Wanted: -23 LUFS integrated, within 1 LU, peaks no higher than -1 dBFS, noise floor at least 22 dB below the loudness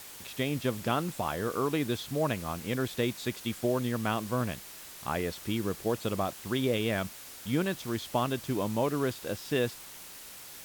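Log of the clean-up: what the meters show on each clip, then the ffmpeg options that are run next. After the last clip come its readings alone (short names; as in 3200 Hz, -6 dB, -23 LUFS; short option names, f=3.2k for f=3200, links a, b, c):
noise floor -47 dBFS; noise floor target -54 dBFS; loudness -32.0 LUFS; peak -15.5 dBFS; loudness target -23.0 LUFS
-> -af "afftdn=nr=7:nf=-47"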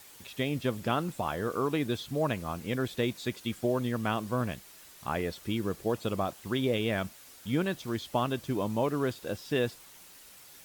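noise floor -53 dBFS; noise floor target -54 dBFS
-> -af "afftdn=nr=6:nf=-53"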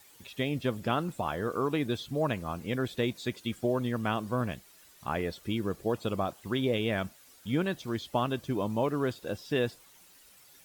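noise floor -58 dBFS; loudness -32.0 LUFS; peak -16.0 dBFS; loudness target -23.0 LUFS
-> -af "volume=9dB"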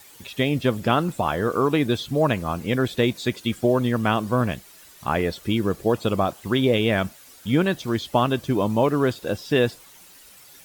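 loudness -23.0 LUFS; peak -7.0 dBFS; noise floor -49 dBFS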